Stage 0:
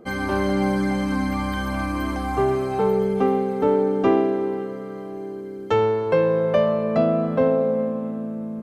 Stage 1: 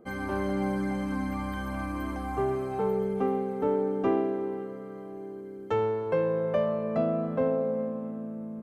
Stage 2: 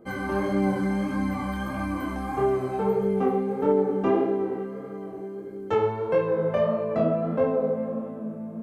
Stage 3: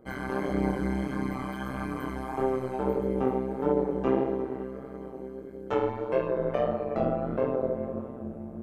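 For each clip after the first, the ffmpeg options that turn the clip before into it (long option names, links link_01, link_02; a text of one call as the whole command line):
ffmpeg -i in.wav -af "equalizer=frequency=4400:width=0.88:gain=-6.5,volume=-7.5dB" out.wav
ffmpeg -i in.wav -af "flanger=delay=20:depth=6.2:speed=1.6,volume=6.5dB" out.wav
ffmpeg -i in.wav -af "tremolo=f=130:d=0.919" out.wav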